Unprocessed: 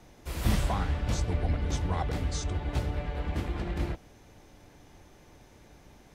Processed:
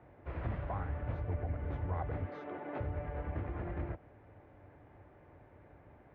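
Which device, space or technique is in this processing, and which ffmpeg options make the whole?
bass amplifier: -filter_complex "[0:a]asettb=1/sr,asplit=3[s0][s1][s2];[s0]atrim=end=2.254[s3];[s1]atrim=start=2.25:end=2.8,asetpts=PTS-STARTPTS,afade=t=in:d=0.004:c=qsin,afade=t=out:st=0.546:d=0.004:c=qsin,highpass=f=220:w=0.5412,highpass=f=220:w=1.3066[s4];[s2]atrim=start=2.796[s5];[s3][s4]acrossfade=d=0.004:c1=hsin:c2=qsin[s6];[s6][s5]acrossfade=d=0.004:c1=qsin:c2=hsin,acompressor=threshold=0.0282:ratio=3,highpass=61,equalizer=f=96:t=q:w=4:g=6,equalizer=f=200:t=q:w=4:g=-7,equalizer=f=600:t=q:w=4:g=4,lowpass=f=2000:w=0.5412,lowpass=f=2000:w=1.3066,volume=0.708"

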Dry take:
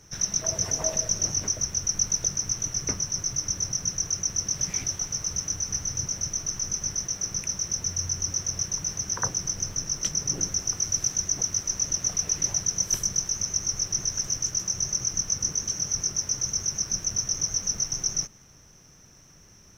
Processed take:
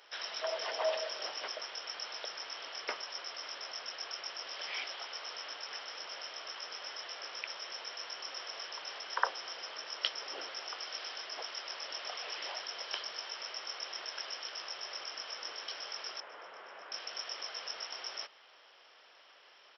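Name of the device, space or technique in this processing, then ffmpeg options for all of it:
musical greeting card: -filter_complex "[0:a]aresample=11025,aresample=44100,highpass=f=550:w=0.5412,highpass=f=550:w=1.3066,equalizer=f=3100:t=o:w=0.26:g=9,asettb=1/sr,asplit=3[s0][s1][s2];[s0]atrim=end=16.204[s3];[s1]atrim=start=16.2:end=16.92,asetpts=PTS-STARTPTS,afade=t=in:d=0.004:c=qsin,afade=t=out:st=0.716:d=0.004:c=qsin,lowpass=1700[s4];[s2]atrim=start=16.916[s5];[s3][s4]acrossfade=d=0.004:c1=hsin:c2=qsin[s6];[s6][s5]acrossfade=d=0.004:c1=qsin:c2=hsin,volume=1.33"

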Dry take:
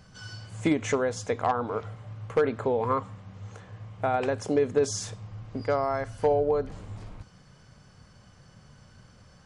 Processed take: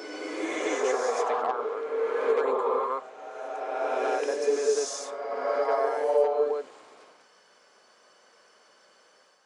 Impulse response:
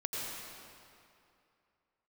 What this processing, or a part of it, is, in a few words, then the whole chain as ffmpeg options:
ghost voice: -filter_complex "[0:a]areverse[s0];[1:a]atrim=start_sample=2205[s1];[s0][s1]afir=irnorm=-1:irlink=0,areverse,highpass=f=380:w=0.5412,highpass=f=380:w=1.3066,volume=0.794"

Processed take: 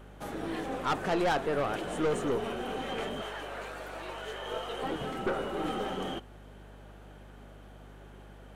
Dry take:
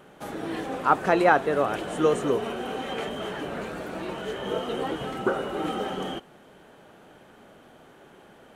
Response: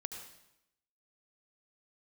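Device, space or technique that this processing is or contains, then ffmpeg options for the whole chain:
valve amplifier with mains hum: -filter_complex "[0:a]asettb=1/sr,asplit=3[s0][s1][s2];[s0]atrim=end=3.214[s3];[s1]atrim=start=3.21:end=4.83,asetpts=PTS-STARTPTS,afade=t=in:d=0.004:c=qsin,afade=t=out:st=1.616:d=0.004:c=qsin,highpass=560[s4];[s2]atrim=start=4.826[s5];[s3][s4]acrossfade=d=0.004:c1=hsin:c2=qsin[s6];[s6][s5]acrossfade=d=0.004:c1=qsin:c2=hsin,aeval=exprs='(tanh(12.6*val(0)+0.35)-tanh(0.35))/12.6':c=same,aeval=exprs='val(0)+0.00398*(sin(2*PI*50*n/s)+sin(2*PI*2*50*n/s)/2+sin(2*PI*3*50*n/s)/3+sin(2*PI*4*50*n/s)/4+sin(2*PI*5*50*n/s)/5)':c=same,volume=0.794"

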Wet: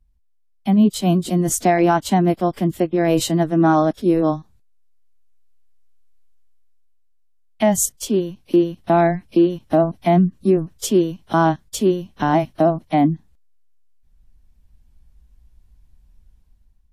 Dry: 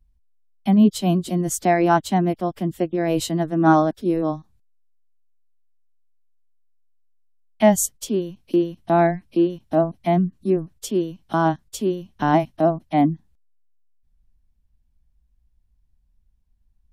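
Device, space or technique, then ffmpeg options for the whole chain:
low-bitrate web radio: -af "dynaudnorm=f=780:g=3:m=3.98,alimiter=limit=0.447:level=0:latency=1:release=150" -ar 32000 -c:a aac -b:a 48k

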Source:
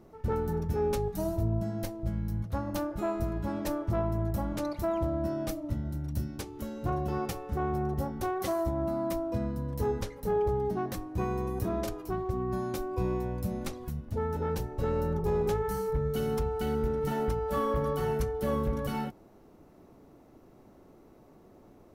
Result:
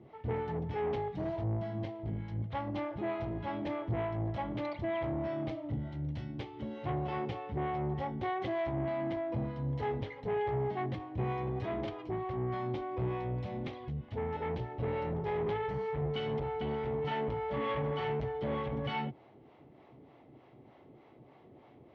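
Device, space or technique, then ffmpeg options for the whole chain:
guitar amplifier with harmonic tremolo: -filter_complex "[0:a]acrossover=split=520[s0][s1];[s0]aeval=exprs='val(0)*(1-0.7/2+0.7/2*cos(2*PI*3.3*n/s))':c=same[s2];[s1]aeval=exprs='val(0)*(1-0.7/2-0.7/2*cos(2*PI*3.3*n/s))':c=same[s3];[s2][s3]amix=inputs=2:normalize=0,asoftclip=type=tanh:threshold=0.0282,highpass=94,equalizer=f=130:t=q:w=4:g=8,equalizer=f=190:t=q:w=4:g=-6,equalizer=f=800:t=q:w=4:g=4,equalizer=f=1400:t=q:w=4:g=-4,equalizer=f=2100:t=q:w=4:g=8,equalizer=f=3200:t=q:w=4:g=8,lowpass=f=3800:w=0.5412,lowpass=f=3800:w=1.3066,volume=1.26"

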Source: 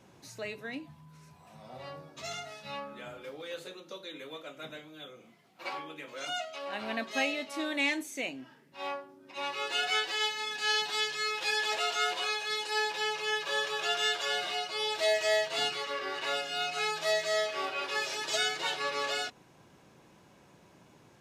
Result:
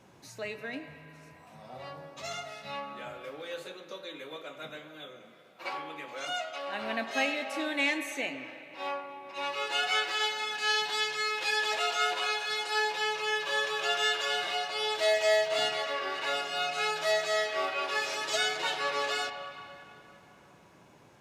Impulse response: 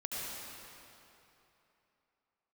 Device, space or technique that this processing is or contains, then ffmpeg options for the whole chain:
filtered reverb send: -filter_complex "[0:a]asplit=2[s0][s1];[s1]highpass=420,lowpass=3000[s2];[1:a]atrim=start_sample=2205[s3];[s2][s3]afir=irnorm=-1:irlink=0,volume=0.398[s4];[s0][s4]amix=inputs=2:normalize=0"

